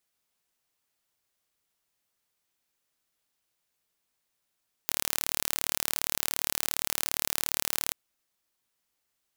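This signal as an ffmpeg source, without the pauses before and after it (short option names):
-f lavfi -i "aevalsrc='0.891*eq(mod(n,1182),0)':d=3.03:s=44100"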